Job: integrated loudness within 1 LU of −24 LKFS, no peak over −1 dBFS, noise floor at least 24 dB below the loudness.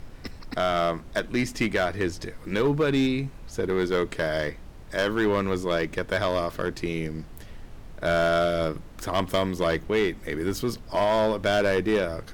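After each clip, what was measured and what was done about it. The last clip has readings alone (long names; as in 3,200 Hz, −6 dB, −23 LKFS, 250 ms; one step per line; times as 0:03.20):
share of clipped samples 1.3%; peaks flattened at −17.0 dBFS; background noise floor −44 dBFS; target noise floor −50 dBFS; integrated loudness −26.0 LKFS; sample peak −17.0 dBFS; target loudness −24.0 LKFS
→ clipped peaks rebuilt −17 dBFS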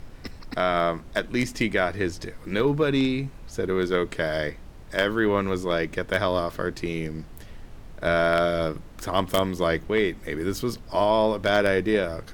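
share of clipped samples 0.0%; background noise floor −44 dBFS; target noise floor −49 dBFS
→ noise reduction from a noise print 6 dB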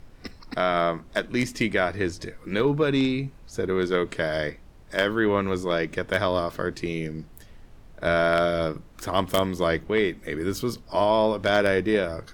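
background noise floor −49 dBFS; integrated loudness −25.0 LKFS; sample peak −8.0 dBFS; target loudness −24.0 LKFS
→ level +1 dB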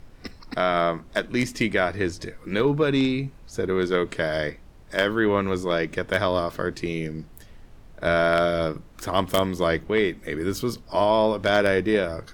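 integrated loudness −24.0 LKFS; sample peak −7.0 dBFS; background noise floor −48 dBFS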